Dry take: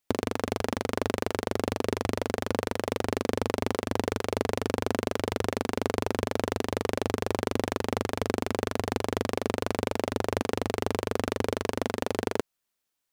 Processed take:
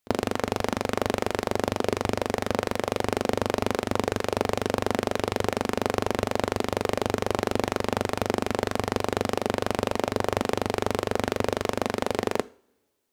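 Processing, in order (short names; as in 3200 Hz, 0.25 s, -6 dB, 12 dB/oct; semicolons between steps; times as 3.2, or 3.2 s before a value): pre-echo 36 ms -23 dB; two-slope reverb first 0.39 s, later 1.8 s, from -25 dB, DRR 15.5 dB; Doppler distortion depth 0.27 ms; gain +3 dB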